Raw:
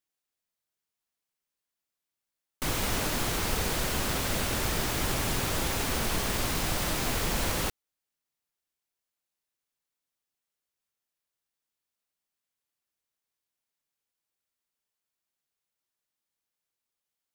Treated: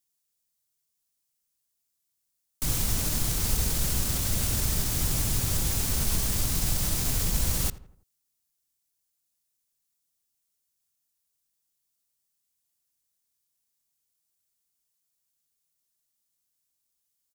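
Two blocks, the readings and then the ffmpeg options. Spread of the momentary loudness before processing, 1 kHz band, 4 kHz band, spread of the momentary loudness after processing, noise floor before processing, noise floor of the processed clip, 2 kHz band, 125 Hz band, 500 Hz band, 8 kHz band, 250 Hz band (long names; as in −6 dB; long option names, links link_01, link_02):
1 LU, −8.0 dB, −1.0 dB, 1 LU, below −85 dBFS, −79 dBFS, −7.0 dB, +4.5 dB, −7.0 dB, +4.5 dB, −1.5 dB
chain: -filter_complex "[0:a]bass=frequency=250:gain=9,treble=frequency=4000:gain=14,acrossover=split=170[link_01][link_02];[link_02]alimiter=limit=-17dB:level=0:latency=1[link_03];[link_01][link_03]amix=inputs=2:normalize=0,asplit=2[link_04][link_05];[link_05]adelay=83,lowpass=frequency=1800:poles=1,volume=-16dB,asplit=2[link_06][link_07];[link_07]adelay=83,lowpass=frequency=1800:poles=1,volume=0.48,asplit=2[link_08][link_09];[link_09]adelay=83,lowpass=frequency=1800:poles=1,volume=0.48,asplit=2[link_10][link_11];[link_11]adelay=83,lowpass=frequency=1800:poles=1,volume=0.48[link_12];[link_04][link_06][link_08][link_10][link_12]amix=inputs=5:normalize=0,volume=-3.5dB"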